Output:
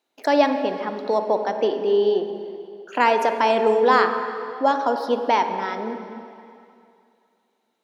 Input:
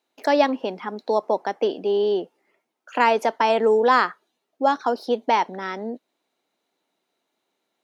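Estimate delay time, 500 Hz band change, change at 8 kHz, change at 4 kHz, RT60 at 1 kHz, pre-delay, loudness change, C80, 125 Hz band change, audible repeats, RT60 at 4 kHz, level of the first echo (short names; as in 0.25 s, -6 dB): none, +1.5 dB, n/a, +0.5 dB, 2.6 s, 39 ms, +1.0 dB, 8.0 dB, n/a, none, 2.4 s, none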